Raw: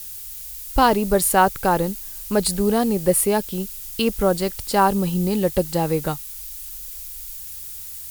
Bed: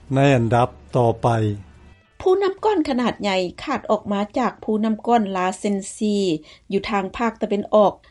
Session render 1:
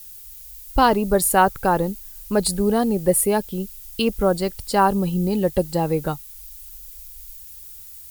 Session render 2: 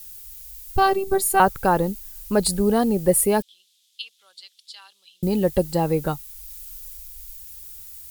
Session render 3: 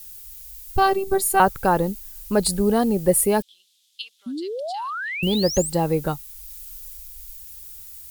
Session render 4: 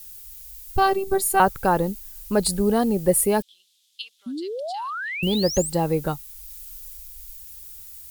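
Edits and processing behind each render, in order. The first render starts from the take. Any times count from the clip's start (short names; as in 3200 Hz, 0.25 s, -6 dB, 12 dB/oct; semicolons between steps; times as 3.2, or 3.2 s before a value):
denoiser 8 dB, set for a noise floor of -35 dBFS
0.77–1.4 robotiser 388 Hz; 3.42–5.23 ladder band-pass 3800 Hz, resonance 65%; 6.46–6.97 doubler 32 ms -4 dB
4.26–5.7 painted sound rise 230–8900 Hz -29 dBFS
gain -1 dB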